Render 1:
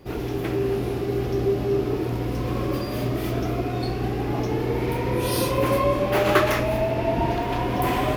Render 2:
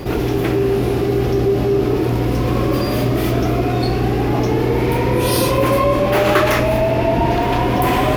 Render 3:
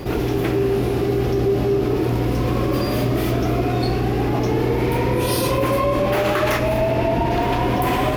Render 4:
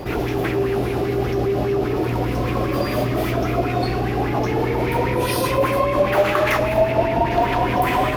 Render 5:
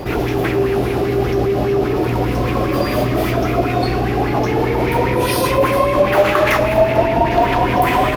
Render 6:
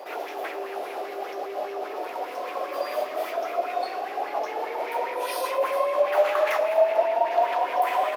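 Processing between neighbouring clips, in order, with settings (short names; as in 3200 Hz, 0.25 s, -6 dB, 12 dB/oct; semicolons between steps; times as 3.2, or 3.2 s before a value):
fast leveller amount 50%; gain +3 dB
maximiser +6.5 dB; gain -9 dB
LFO bell 5 Hz 600–2400 Hz +10 dB; gain -2.5 dB
echo 0.446 s -17 dB; gain +4 dB
ladder high-pass 520 Hz, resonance 45%; gain -3.5 dB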